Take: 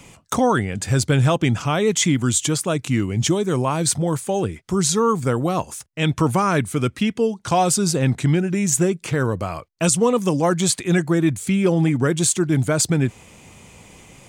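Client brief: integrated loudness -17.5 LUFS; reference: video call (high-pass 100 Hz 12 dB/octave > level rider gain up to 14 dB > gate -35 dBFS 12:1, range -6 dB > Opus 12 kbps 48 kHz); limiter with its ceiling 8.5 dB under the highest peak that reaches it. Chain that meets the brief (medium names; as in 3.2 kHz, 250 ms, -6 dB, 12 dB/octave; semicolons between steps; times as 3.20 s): peak limiter -14 dBFS; high-pass 100 Hz 12 dB/octave; level rider gain up to 14 dB; gate -35 dBFS 12:1, range -6 dB; trim +7 dB; Opus 12 kbps 48 kHz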